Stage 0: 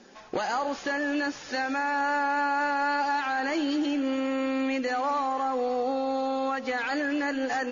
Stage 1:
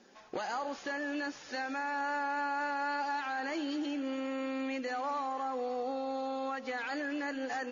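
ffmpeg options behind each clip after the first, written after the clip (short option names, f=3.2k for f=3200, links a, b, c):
-af "lowshelf=f=110:g=-6.5,volume=-7.5dB"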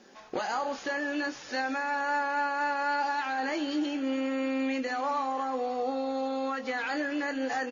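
-filter_complex "[0:a]asplit=2[a][b];[b]adelay=23,volume=-9dB[c];[a][c]amix=inputs=2:normalize=0,volume=4.5dB"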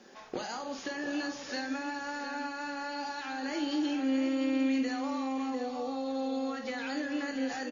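-filter_complex "[0:a]asplit=2[a][b];[b]aecho=0:1:49|613:0.355|0.119[c];[a][c]amix=inputs=2:normalize=0,acrossover=split=370|3000[d][e][f];[e]acompressor=threshold=-39dB:ratio=6[g];[d][g][f]amix=inputs=3:normalize=0,asplit=2[h][i];[i]aecho=0:1:700:0.335[j];[h][j]amix=inputs=2:normalize=0"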